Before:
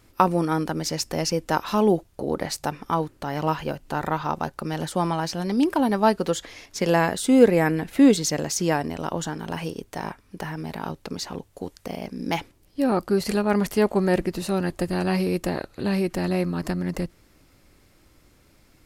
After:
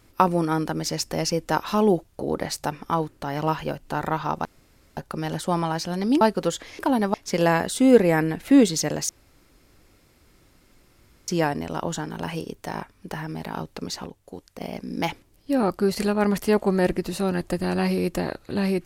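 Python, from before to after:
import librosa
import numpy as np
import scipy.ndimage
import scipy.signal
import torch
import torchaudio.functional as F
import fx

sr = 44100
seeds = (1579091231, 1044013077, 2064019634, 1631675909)

y = fx.edit(x, sr, fx.insert_room_tone(at_s=4.45, length_s=0.52),
    fx.move(start_s=5.69, length_s=0.35, to_s=6.62),
    fx.insert_room_tone(at_s=8.57, length_s=2.19),
    fx.clip_gain(start_s=11.35, length_s=0.55, db=-5.5), tone=tone)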